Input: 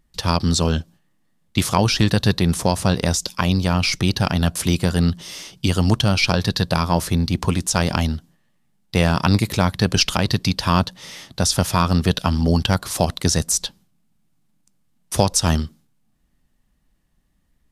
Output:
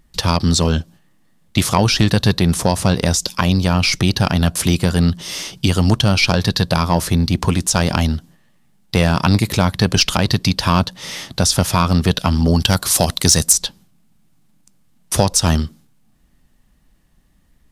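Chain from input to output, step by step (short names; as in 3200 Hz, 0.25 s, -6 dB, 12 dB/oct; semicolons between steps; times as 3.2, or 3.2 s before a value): 12.6–13.53 high shelf 3700 Hz +9.5 dB; in parallel at +2 dB: compressor, threshold -28 dBFS, peak gain reduction 17 dB; on the sum: soft clip -2 dBFS, distortion -22 dB; gain +1.5 dB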